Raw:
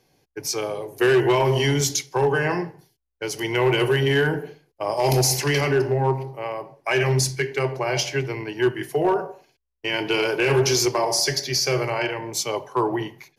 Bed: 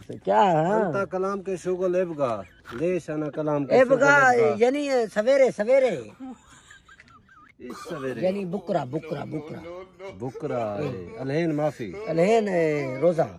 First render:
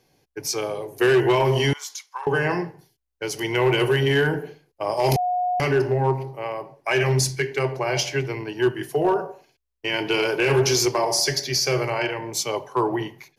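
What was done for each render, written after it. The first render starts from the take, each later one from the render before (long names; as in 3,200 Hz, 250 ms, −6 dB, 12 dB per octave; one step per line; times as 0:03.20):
0:01.73–0:02.27: four-pole ladder high-pass 970 Hz, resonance 65%
0:05.16–0:05.60: beep over 723 Hz −20 dBFS
0:08.38–0:09.28: parametric band 2,100 Hz −6.5 dB 0.29 octaves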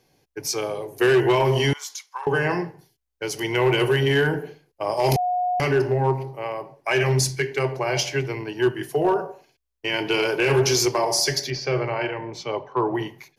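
0:11.50–0:12.95: high-frequency loss of the air 240 metres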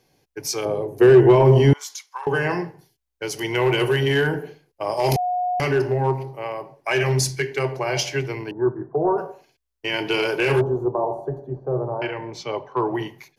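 0:00.65–0:01.81: tilt shelving filter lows +8.5 dB, about 1,100 Hz
0:08.51–0:09.18: Butterworth low-pass 1,300 Hz 48 dB per octave
0:10.61–0:12.02: inverse Chebyshev low-pass filter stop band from 2,000 Hz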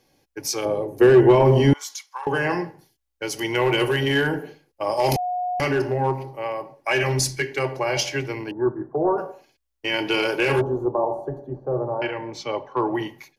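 comb filter 3.6 ms, depth 33%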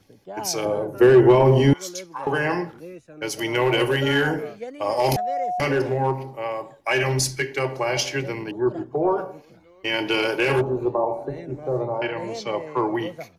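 mix in bed −14.5 dB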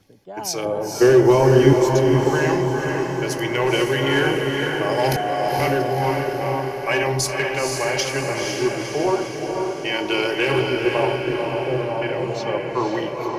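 feedback delay with all-pass diffusion 495 ms, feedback 59%, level −3 dB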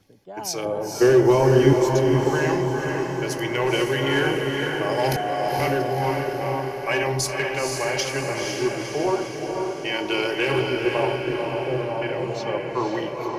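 level −2.5 dB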